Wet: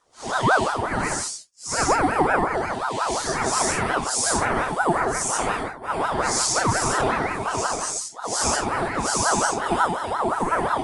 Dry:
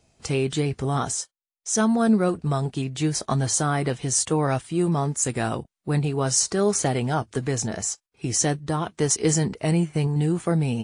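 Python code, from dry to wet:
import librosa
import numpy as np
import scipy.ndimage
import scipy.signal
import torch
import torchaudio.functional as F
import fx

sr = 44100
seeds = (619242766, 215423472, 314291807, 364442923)

y = fx.phase_scramble(x, sr, seeds[0], window_ms=200)
y = fx.rev_gated(y, sr, seeds[1], gate_ms=150, shape='rising', drr_db=-1.5)
y = fx.ring_lfo(y, sr, carrier_hz=840.0, swing_pct=40, hz=5.6)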